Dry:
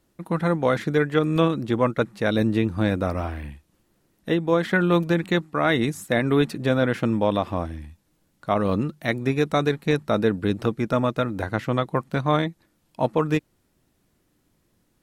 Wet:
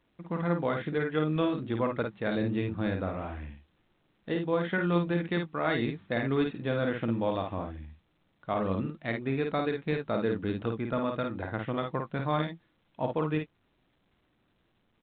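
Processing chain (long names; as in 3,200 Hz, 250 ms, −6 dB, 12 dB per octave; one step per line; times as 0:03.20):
ambience of single reflections 52 ms −4.5 dB, 70 ms −17.5 dB
level −9 dB
A-law companding 64 kbit/s 8,000 Hz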